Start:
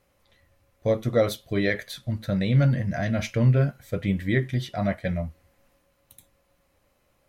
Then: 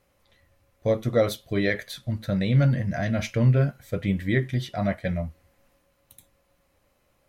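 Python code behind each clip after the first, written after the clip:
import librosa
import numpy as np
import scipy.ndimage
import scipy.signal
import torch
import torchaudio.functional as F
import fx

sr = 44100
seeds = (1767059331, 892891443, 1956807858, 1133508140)

y = x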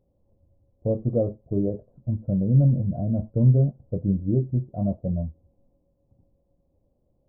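y = scipy.ndimage.gaussian_filter1d(x, 15.0, mode='constant')
y = y * librosa.db_to_amplitude(2.5)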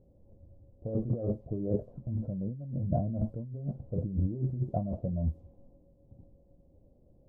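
y = fx.over_compress(x, sr, threshold_db=-32.0, ratio=-1.0)
y = fx.env_lowpass(y, sr, base_hz=590.0, full_db=-26.0)
y = y * librosa.db_to_amplitude(-1.0)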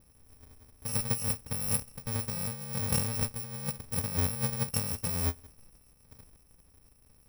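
y = fx.bit_reversed(x, sr, seeds[0], block=128)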